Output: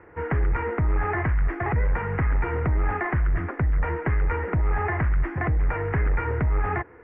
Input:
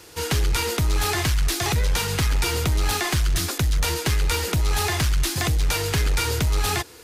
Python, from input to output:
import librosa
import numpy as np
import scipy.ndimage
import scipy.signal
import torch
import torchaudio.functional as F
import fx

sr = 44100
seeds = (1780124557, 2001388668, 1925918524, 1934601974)

y = scipy.signal.sosfilt(scipy.signal.ellip(4, 1.0, 50, 2000.0, 'lowpass', fs=sr, output='sos'), x)